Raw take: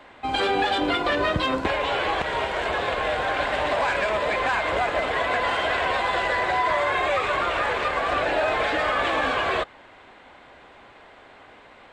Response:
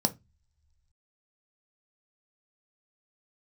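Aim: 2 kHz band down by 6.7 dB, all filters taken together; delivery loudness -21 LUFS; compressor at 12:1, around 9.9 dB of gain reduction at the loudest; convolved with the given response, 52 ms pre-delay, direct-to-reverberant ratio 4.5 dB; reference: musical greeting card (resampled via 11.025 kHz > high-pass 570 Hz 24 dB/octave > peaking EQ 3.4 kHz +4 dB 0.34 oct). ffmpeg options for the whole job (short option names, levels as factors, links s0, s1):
-filter_complex "[0:a]equalizer=f=2000:t=o:g=-9,acompressor=threshold=0.0316:ratio=12,asplit=2[s0][s1];[1:a]atrim=start_sample=2205,adelay=52[s2];[s1][s2]afir=irnorm=-1:irlink=0,volume=0.251[s3];[s0][s3]amix=inputs=2:normalize=0,aresample=11025,aresample=44100,highpass=f=570:w=0.5412,highpass=f=570:w=1.3066,equalizer=f=3400:t=o:w=0.34:g=4,volume=3.76"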